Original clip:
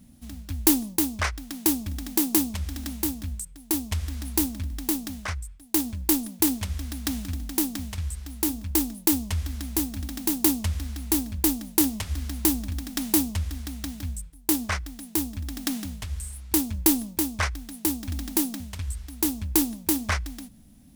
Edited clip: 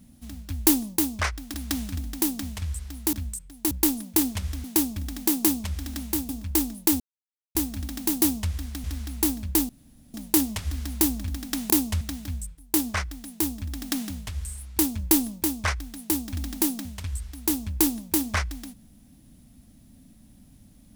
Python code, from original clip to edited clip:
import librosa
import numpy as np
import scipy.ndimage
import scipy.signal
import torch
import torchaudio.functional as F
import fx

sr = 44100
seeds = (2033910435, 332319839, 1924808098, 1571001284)

y = fx.edit(x, sr, fx.swap(start_s=1.54, length_s=1.65, other_s=6.9, other_length_s=1.59),
    fx.cut(start_s=3.77, length_s=2.2),
    fx.silence(start_s=9.2, length_s=0.55),
    fx.swap(start_s=10.42, length_s=0.31, other_s=13.14, other_length_s=0.62),
    fx.insert_room_tone(at_s=11.58, length_s=0.45), tone=tone)